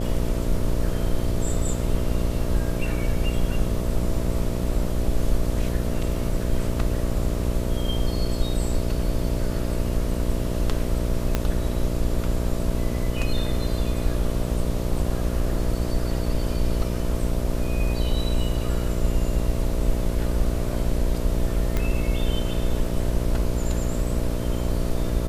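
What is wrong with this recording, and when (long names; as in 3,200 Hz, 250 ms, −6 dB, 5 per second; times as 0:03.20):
mains buzz 60 Hz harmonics 11 −27 dBFS
0:11.35: click −8 dBFS
0:21.77: click −11 dBFS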